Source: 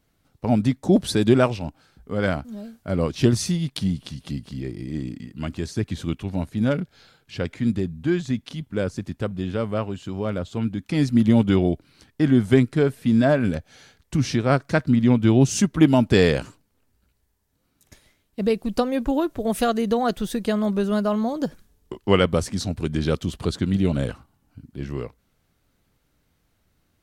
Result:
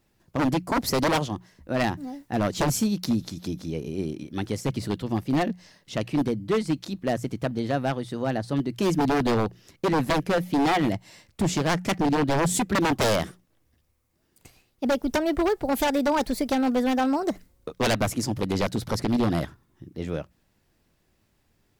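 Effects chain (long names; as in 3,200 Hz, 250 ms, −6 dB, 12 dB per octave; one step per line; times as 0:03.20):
speed change +24%
mains-hum notches 60/120/180 Hz
wave folding −16.5 dBFS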